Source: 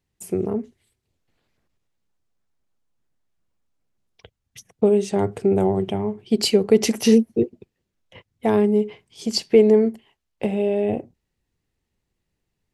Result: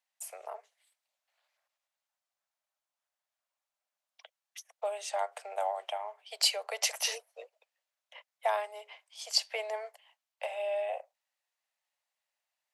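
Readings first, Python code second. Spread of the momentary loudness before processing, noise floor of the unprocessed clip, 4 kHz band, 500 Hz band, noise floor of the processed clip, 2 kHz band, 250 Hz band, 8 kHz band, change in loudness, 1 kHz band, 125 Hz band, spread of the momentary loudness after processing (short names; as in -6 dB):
11 LU, -79 dBFS, -3.5 dB, -18.0 dB, under -85 dBFS, -3.5 dB, under -40 dB, -3.5 dB, -13.0 dB, -3.5 dB, under -40 dB, 20 LU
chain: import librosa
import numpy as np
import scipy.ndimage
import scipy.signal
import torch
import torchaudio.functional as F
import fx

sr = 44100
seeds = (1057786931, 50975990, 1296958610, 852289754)

y = scipy.signal.sosfilt(scipy.signal.butter(12, 570.0, 'highpass', fs=sr, output='sos'), x)
y = y * librosa.db_to_amplitude(-3.5)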